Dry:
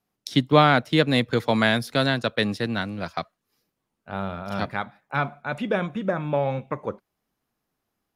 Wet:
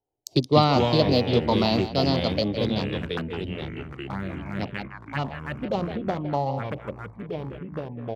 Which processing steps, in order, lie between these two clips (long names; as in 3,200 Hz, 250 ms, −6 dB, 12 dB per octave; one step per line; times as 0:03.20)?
adaptive Wiener filter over 25 samples
far-end echo of a speakerphone 160 ms, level −10 dB
phaser swept by the level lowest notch 200 Hz, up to 1,600 Hz, full sweep at −22.5 dBFS
formants moved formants +3 semitones
delay with pitch and tempo change per echo 104 ms, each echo −4 semitones, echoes 3, each echo −6 dB